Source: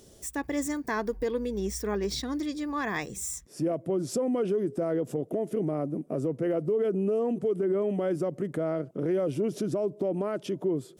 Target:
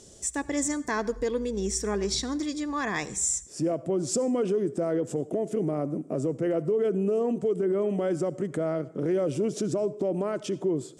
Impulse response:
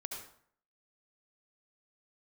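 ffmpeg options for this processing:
-filter_complex "[0:a]lowpass=f=7600:t=q:w=2.7,asplit=2[s0][s1];[1:a]atrim=start_sample=2205[s2];[s1][s2]afir=irnorm=-1:irlink=0,volume=0.224[s3];[s0][s3]amix=inputs=2:normalize=0"

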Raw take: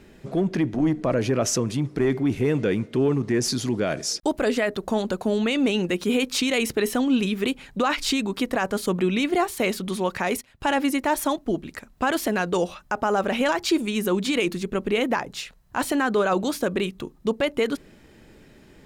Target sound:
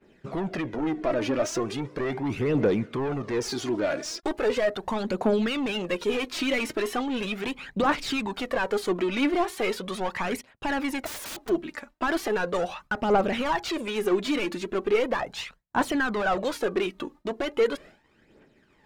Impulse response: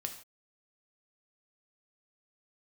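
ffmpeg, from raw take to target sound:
-filter_complex "[0:a]asplit=2[s0][s1];[s1]highpass=f=720:p=1,volume=8.91,asoftclip=type=tanh:threshold=0.237[s2];[s0][s2]amix=inputs=2:normalize=0,lowpass=f=1700:p=1,volume=0.501,agate=range=0.0224:threshold=0.0158:ratio=3:detection=peak,aphaser=in_gain=1:out_gain=1:delay=3.6:decay=0.55:speed=0.38:type=triangular,asplit=3[s3][s4][s5];[s3]afade=t=out:st=11.05:d=0.02[s6];[s4]aeval=exprs='(mod(18.8*val(0)+1,2)-1)/18.8':c=same,afade=t=in:st=11.05:d=0.02,afade=t=out:st=11.48:d=0.02[s7];[s5]afade=t=in:st=11.48:d=0.02[s8];[s6][s7][s8]amix=inputs=3:normalize=0,volume=0.473"

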